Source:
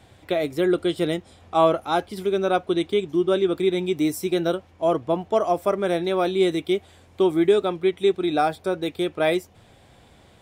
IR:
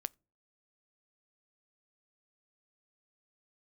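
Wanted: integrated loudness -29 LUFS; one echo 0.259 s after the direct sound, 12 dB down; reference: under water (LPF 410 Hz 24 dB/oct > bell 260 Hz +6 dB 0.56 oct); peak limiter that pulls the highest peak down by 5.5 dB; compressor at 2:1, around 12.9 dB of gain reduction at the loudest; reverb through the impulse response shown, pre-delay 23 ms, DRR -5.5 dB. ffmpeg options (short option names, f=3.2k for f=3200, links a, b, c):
-filter_complex "[0:a]acompressor=threshold=-37dB:ratio=2,alimiter=level_in=0.5dB:limit=-24dB:level=0:latency=1,volume=-0.5dB,aecho=1:1:259:0.251,asplit=2[a][b];[1:a]atrim=start_sample=2205,adelay=23[c];[b][c]afir=irnorm=-1:irlink=0,volume=7dB[d];[a][d]amix=inputs=2:normalize=0,lowpass=f=410:w=0.5412,lowpass=f=410:w=1.3066,equalizer=f=260:t=o:w=0.56:g=6,volume=0.5dB"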